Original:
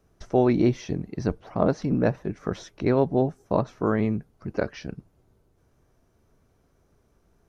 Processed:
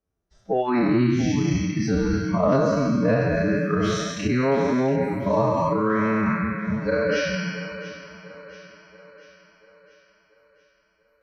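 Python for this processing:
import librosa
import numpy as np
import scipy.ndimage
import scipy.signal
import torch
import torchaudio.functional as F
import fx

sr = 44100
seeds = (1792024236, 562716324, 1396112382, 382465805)

p1 = fx.spec_trails(x, sr, decay_s=1.9)
p2 = fx.noise_reduce_blind(p1, sr, reduce_db=27)
p3 = fx.over_compress(p2, sr, threshold_db=-28.0, ratio=-0.5)
p4 = p2 + (p3 * 10.0 ** (-1.0 / 20.0))
p5 = fx.cheby_harmonics(p4, sr, harmonics=(3, 5), levels_db=(-23, -31), full_scale_db=-4.5)
p6 = p5 + fx.echo_split(p5, sr, split_hz=390.0, low_ms=263, high_ms=458, feedback_pct=52, wet_db=-14, dry=0)
y = fx.stretch_vocoder(p6, sr, factor=1.5)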